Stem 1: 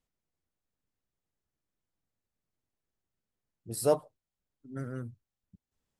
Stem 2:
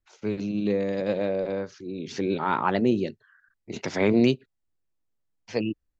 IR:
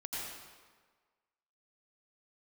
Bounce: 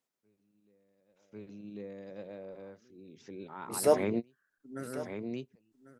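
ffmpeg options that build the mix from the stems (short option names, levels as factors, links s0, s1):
-filter_complex "[0:a]highpass=260,volume=1.19,asplit=3[s0][s1][s2];[s1]volume=0.15[s3];[1:a]bandreject=f=4400:w=9.8,volume=0.299,asplit=2[s4][s5];[s5]volume=0.398[s6];[s2]apad=whole_len=264461[s7];[s4][s7]sidechaingate=range=0.02:threshold=0.002:ratio=16:detection=peak[s8];[s3][s6]amix=inputs=2:normalize=0,aecho=0:1:1096:1[s9];[s0][s8][s9]amix=inputs=3:normalize=0,equalizer=f=3000:w=1.5:g=-2.5"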